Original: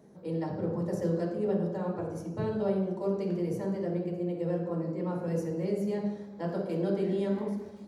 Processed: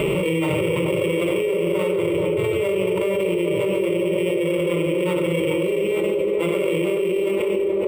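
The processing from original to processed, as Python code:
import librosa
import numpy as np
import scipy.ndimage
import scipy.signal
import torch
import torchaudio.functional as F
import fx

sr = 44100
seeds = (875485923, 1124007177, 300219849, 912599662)

p1 = np.r_[np.sort(x[:len(x) // 16 * 16].reshape(-1, 16), axis=1).ravel(), x[len(x) // 16 * 16:]]
p2 = fx.fixed_phaser(p1, sr, hz=1100.0, stages=8)
p3 = np.repeat(scipy.signal.resample_poly(p2, 1, 4), 4)[:len(p2)]
p4 = fx.high_shelf(p3, sr, hz=6200.0, db=-11.5)
p5 = p4 + fx.echo_banded(p4, sr, ms=429, feedback_pct=67, hz=490.0, wet_db=-5, dry=0)
p6 = fx.room_shoebox(p5, sr, seeds[0], volume_m3=2800.0, walls='furnished', distance_m=1.1)
p7 = fx.env_flatten(p6, sr, amount_pct=100)
y = p7 * librosa.db_to_amplitude(4.5)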